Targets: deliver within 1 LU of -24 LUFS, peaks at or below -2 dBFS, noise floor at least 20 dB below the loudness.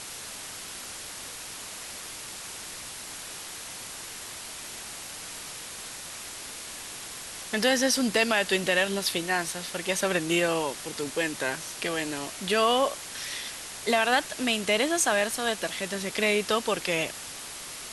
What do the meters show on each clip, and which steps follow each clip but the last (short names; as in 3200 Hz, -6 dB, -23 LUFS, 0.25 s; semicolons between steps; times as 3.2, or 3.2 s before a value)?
noise floor -40 dBFS; noise floor target -49 dBFS; loudness -28.5 LUFS; peak -10.0 dBFS; loudness target -24.0 LUFS
-> noise print and reduce 9 dB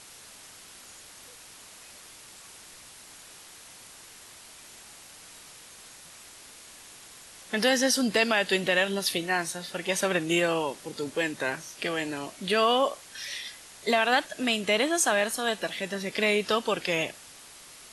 noise floor -49 dBFS; loudness -26.5 LUFS; peak -10.0 dBFS; loudness target -24.0 LUFS
-> gain +2.5 dB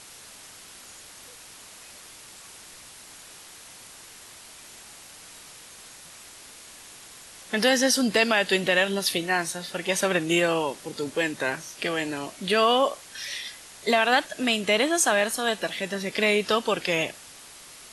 loudness -24.0 LUFS; peak -7.5 dBFS; noise floor -47 dBFS